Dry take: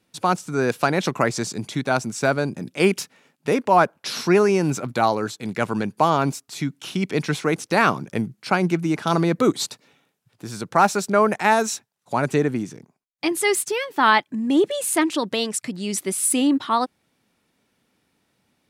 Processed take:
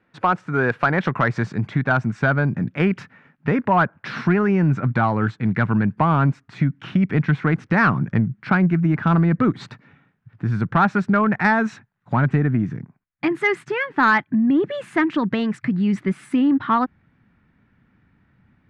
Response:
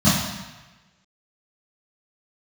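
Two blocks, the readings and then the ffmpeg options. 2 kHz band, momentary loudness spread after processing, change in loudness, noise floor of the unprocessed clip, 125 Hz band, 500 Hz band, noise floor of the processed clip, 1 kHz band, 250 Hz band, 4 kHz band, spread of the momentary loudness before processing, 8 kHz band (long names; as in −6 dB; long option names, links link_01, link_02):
+3.0 dB, 6 LU, +1.5 dB, −71 dBFS, +8.5 dB, −4.0 dB, −65 dBFS, −0.5 dB, +3.5 dB, −9.5 dB, 10 LU, below −25 dB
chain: -af "asubboost=boost=7.5:cutoff=170,acompressor=threshold=-18dB:ratio=3,lowpass=frequency=1700:width_type=q:width=2.3,acontrast=65,volume=-4dB"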